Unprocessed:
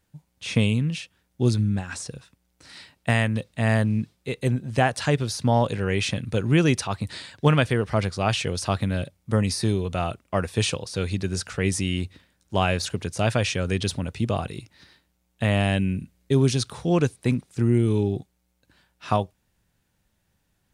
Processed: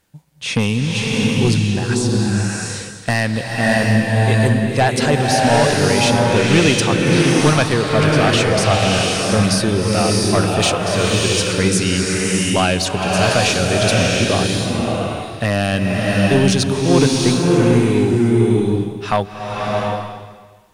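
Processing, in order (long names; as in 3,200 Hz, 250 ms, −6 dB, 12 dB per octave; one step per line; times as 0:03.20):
low-shelf EQ 180 Hz −7.5 dB
in parallel at −6.5 dB: sine wavefolder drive 9 dB, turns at −6.5 dBFS
on the sum: slow-attack reverb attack 690 ms, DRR −2.5 dB
level −1 dB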